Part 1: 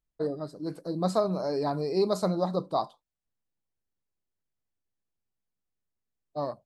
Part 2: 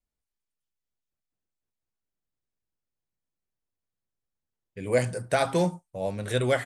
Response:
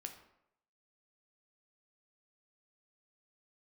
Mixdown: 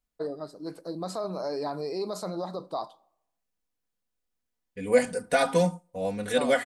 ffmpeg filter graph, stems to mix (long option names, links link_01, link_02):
-filter_complex "[0:a]alimiter=limit=-22dB:level=0:latency=1:release=43,highpass=frequency=370:poles=1,volume=-0.5dB,asplit=2[link_01][link_02];[link_02]volume=-11dB[link_03];[1:a]aecho=1:1:4.1:0.96,volume=-2dB,asplit=2[link_04][link_05];[link_05]volume=-24dB[link_06];[2:a]atrim=start_sample=2205[link_07];[link_03][link_06]amix=inputs=2:normalize=0[link_08];[link_08][link_07]afir=irnorm=-1:irlink=0[link_09];[link_01][link_04][link_09]amix=inputs=3:normalize=0"